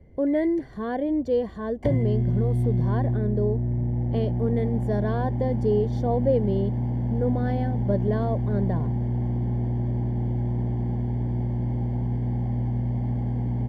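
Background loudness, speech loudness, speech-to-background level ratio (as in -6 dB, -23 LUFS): -26.5 LUFS, -27.5 LUFS, -1.0 dB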